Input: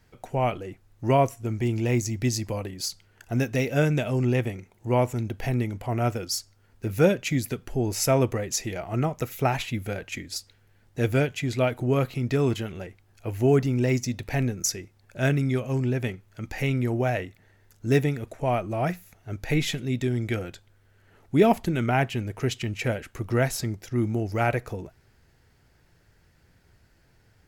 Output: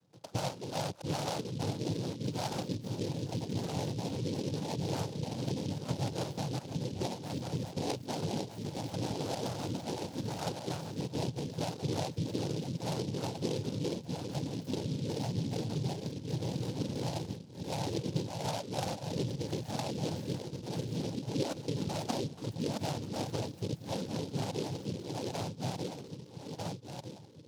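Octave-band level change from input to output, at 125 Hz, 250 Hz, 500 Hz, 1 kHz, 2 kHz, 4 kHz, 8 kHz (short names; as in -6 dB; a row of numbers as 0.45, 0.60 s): -9.5, -8.5, -11.0, -9.0, -16.0, -4.5, -10.5 dB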